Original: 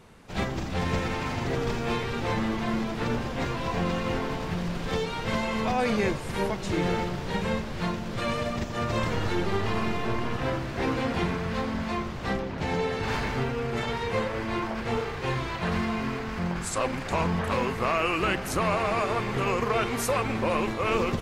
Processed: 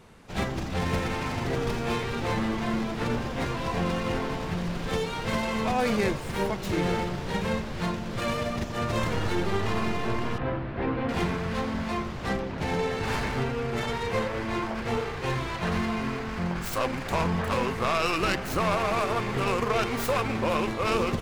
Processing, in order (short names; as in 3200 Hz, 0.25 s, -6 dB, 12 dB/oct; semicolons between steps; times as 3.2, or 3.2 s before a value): tracing distortion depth 0.19 ms; 10.38–11.09 air absorption 410 m